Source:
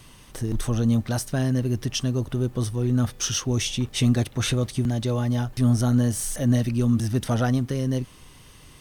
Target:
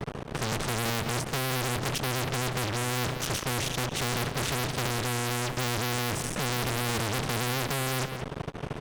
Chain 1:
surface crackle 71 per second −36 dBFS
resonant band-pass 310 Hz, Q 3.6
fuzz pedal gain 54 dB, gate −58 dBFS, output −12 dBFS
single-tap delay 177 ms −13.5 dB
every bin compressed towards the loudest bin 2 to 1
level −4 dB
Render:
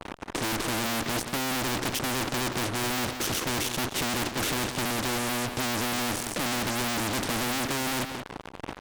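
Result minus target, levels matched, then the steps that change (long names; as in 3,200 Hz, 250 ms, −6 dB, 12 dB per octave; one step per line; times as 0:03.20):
125 Hz band −6.5 dB
change: resonant band-pass 150 Hz, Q 3.6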